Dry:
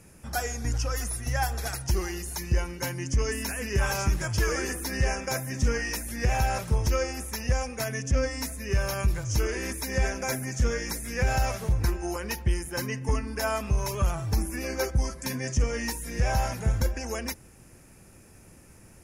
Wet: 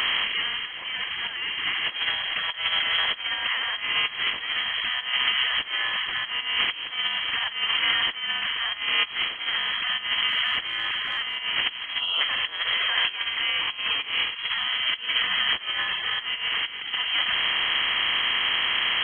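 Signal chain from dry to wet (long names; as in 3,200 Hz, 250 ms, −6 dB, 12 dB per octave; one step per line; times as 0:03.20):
compressor on every frequency bin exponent 0.4
brickwall limiter −14.5 dBFS, peak gain reduction 5.5 dB
0:12.00–0:12.21: gain on a spectral selection 980–2,100 Hz −15 dB
compressor whose output falls as the input rises −27 dBFS, ratio −0.5
Butterworth high-pass 310 Hz 96 dB per octave
voice inversion scrambler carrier 3,600 Hz
0:10.28–0:11.37: transient designer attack −11 dB, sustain +4 dB
level +6 dB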